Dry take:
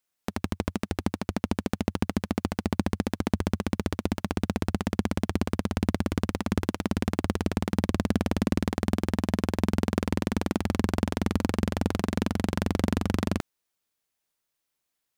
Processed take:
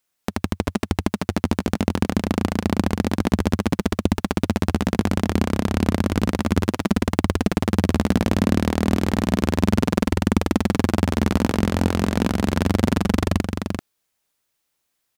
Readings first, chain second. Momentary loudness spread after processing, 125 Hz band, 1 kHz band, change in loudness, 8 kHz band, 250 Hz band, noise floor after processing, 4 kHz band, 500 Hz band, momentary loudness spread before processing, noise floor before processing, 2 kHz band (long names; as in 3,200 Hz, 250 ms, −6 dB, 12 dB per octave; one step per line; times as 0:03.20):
4 LU, +7.0 dB, +7.0 dB, +7.0 dB, +7.0 dB, +7.0 dB, −75 dBFS, +7.0 dB, +7.0 dB, 4 LU, −82 dBFS, +7.0 dB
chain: single-tap delay 388 ms −5.5 dB
level +6 dB